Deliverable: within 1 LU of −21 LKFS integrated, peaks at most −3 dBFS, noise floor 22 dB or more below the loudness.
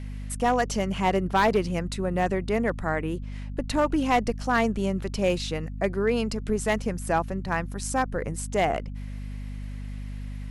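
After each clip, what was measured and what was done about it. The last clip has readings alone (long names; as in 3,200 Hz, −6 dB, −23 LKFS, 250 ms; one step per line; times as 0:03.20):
share of clipped samples 0.5%; peaks flattened at −15.0 dBFS; mains hum 50 Hz; hum harmonics up to 250 Hz; level of the hum −32 dBFS; integrated loudness −26.5 LKFS; sample peak −15.0 dBFS; target loudness −21.0 LKFS
→ clipped peaks rebuilt −15 dBFS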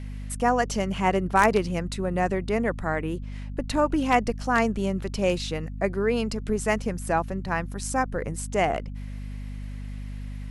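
share of clipped samples 0.0%; mains hum 50 Hz; hum harmonics up to 250 Hz; level of the hum −32 dBFS
→ hum removal 50 Hz, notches 5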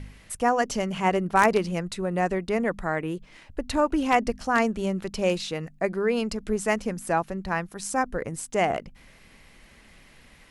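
mains hum none found; integrated loudness −26.0 LKFS; sample peak −6.0 dBFS; target loudness −21.0 LKFS
→ level +5 dB
brickwall limiter −3 dBFS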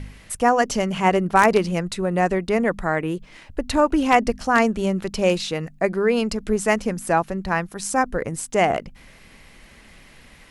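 integrated loudness −21.5 LKFS; sample peak −3.0 dBFS; background noise floor −49 dBFS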